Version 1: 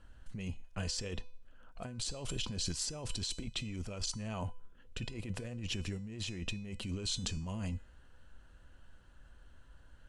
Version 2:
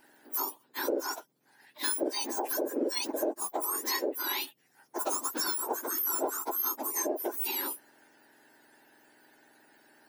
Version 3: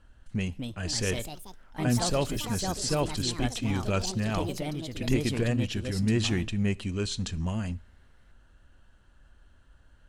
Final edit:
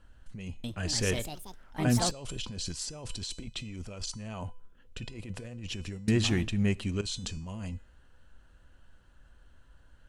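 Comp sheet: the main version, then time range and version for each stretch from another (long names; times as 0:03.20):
1
0:00.64–0:02.11: punch in from 3
0:06.08–0:07.01: punch in from 3
not used: 2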